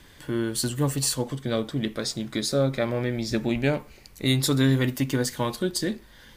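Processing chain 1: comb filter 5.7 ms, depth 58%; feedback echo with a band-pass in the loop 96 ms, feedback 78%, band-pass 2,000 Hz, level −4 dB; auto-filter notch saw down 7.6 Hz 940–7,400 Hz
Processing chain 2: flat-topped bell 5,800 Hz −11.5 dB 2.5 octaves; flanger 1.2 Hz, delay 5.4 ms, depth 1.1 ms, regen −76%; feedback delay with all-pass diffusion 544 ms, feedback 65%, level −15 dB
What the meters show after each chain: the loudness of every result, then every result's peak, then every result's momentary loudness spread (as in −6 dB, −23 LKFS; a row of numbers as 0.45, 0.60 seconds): −25.5, −31.5 LKFS; −10.0, −15.5 dBFS; 6, 9 LU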